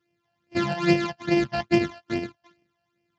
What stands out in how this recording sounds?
a buzz of ramps at a fixed pitch in blocks of 128 samples
phaser sweep stages 12, 2.4 Hz, lowest notch 360–1,300 Hz
Speex

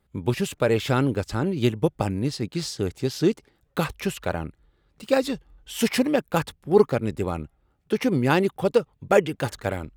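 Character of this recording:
background noise floor −68 dBFS
spectral slope −5.5 dB per octave

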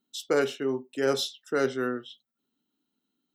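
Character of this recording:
background noise floor −84 dBFS
spectral slope −4.0 dB per octave

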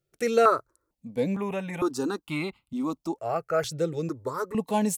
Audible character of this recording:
notches that jump at a steady rate 2.2 Hz 270–1,700 Hz

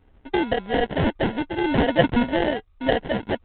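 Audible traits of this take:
aliases and images of a low sample rate 1,200 Hz, jitter 0%
G.726

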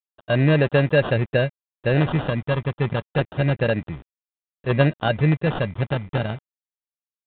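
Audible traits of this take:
a quantiser's noise floor 8 bits, dither none
phaser sweep stages 2, 0.28 Hz, lowest notch 700–1,600 Hz
aliases and images of a low sample rate 2,200 Hz, jitter 0%
mu-law

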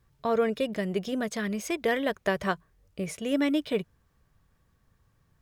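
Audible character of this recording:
background noise floor −69 dBFS
spectral slope −4.0 dB per octave

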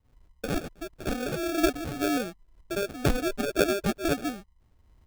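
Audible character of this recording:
phaser sweep stages 6, 2 Hz, lowest notch 640–5,000 Hz
aliases and images of a low sample rate 1,000 Hz, jitter 0%
amplitude modulation by smooth noise

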